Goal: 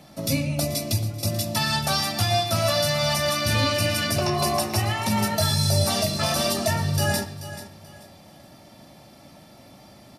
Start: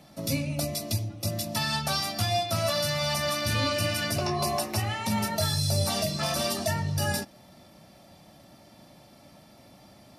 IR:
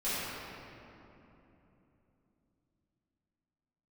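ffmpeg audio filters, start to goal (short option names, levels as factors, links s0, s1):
-filter_complex "[0:a]aecho=1:1:434|868|1302:0.211|0.0571|0.0154,asplit=2[s0][s1];[1:a]atrim=start_sample=2205,afade=t=out:st=0.31:d=0.01,atrim=end_sample=14112,asetrate=66150,aresample=44100[s2];[s1][s2]afir=irnorm=-1:irlink=0,volume=0.141[s3];[s0][s3]amix=inputs=2:normalize=0,volume=1.58"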